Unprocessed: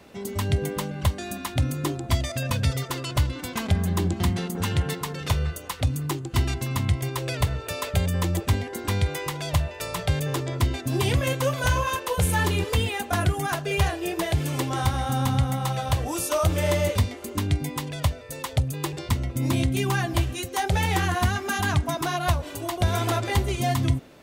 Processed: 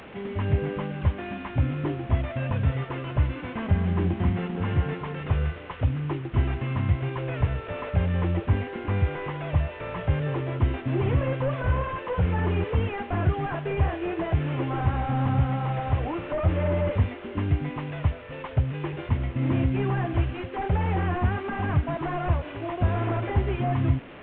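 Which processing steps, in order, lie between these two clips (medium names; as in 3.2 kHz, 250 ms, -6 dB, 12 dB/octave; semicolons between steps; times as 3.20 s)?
one-bit delta coder 16 kbps, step -37.5 dBFS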